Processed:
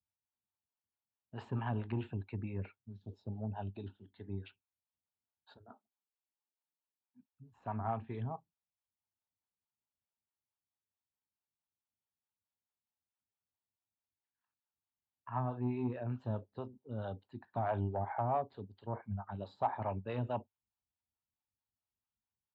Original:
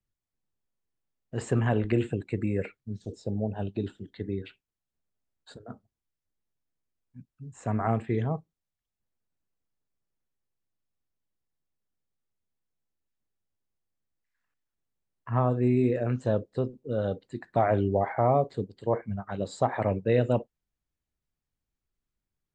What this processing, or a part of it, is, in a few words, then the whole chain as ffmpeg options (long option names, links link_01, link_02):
guitar amplifier with harmonic tremolo: -filter_complex "[0:a]asplit=3[link_01][link_02][link_03];[link_01]afade=type=out:start_time=5.68:duration=0.02[link_04];[link_02]highpass=frequency=260:width=0.5412,highpass=frequency=260:width=1.3066,afade=type=in:start_time=5.68:duration=0.02,afade=type=out:start_time=7.3:duration=0.02[link_05];[link_03]afade=type=in:start_time=7.3:duration=0.02[link_06];[link_04][link_05][link_06]amix=inputs=3:normalize=0,acrossover=split=400[link_07][link_08];[link_07]aeval=exprs='val(0)*(1-0.7/2+0.7/2*cos(2*PI*4.6*n/s))':channel_layout=same[link_09];[link_08]aeval=exprs='val(0)*(1-0.7/2-0.7/2*cos(2*PI*4.6*n/s))':channel_layout=same[link_10];[link_09][link_10]amix=inputs=2:normalize=0,asoftclip=type=tanh:threshold=-17dB,highpass=80,equalizer=frequency=97:width_type=q:width=4:gain=5,equalizer=frequency=150:width_type=q:width=4:gain=-8,equalizer=frequency=330:width_type=q:width=4:gain=-6,equalizer=frequency=490:width_type=q:width=4:gain=-10,equalizer=frequency=890:width_type=q:width=4:gain=9,equalizer=frequency=2000:width_type=q:width=4:gain=-9,lowpass=frequency=3800:width=0.5412,lowpass=frequency=3800:width=1.3066,volume=-5.5dB"